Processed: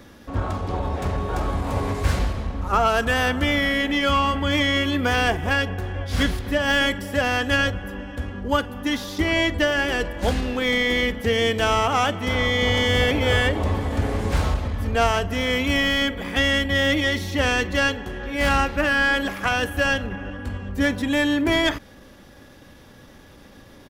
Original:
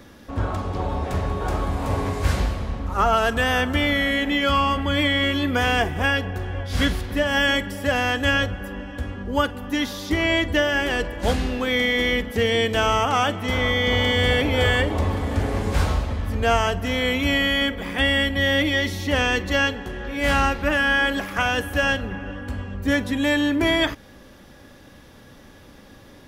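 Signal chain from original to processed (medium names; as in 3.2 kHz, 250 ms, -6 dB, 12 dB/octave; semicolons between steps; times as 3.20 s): tracing distortion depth 0.035 ms; tempo 1.1×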